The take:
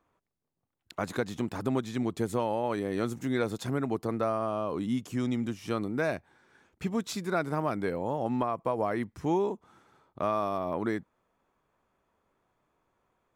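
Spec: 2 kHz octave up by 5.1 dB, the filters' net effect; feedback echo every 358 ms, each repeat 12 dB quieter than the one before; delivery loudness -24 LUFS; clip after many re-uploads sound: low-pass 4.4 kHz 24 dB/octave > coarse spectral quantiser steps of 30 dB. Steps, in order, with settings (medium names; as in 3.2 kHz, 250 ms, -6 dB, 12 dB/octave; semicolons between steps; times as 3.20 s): low-pass 4.4 kHz 24 dB/octave; peaking EQ 2 kHz +7 dB; feedback delay 358 ms, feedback 25%, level -12 dB; coarse spectral quantiser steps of 30 dB; trim +7.5 dB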